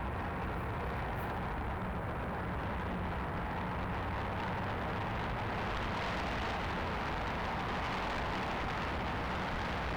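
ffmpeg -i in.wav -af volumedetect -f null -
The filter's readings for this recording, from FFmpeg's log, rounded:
mean_volume: -36.4 dB
max_volume: -31.2 dB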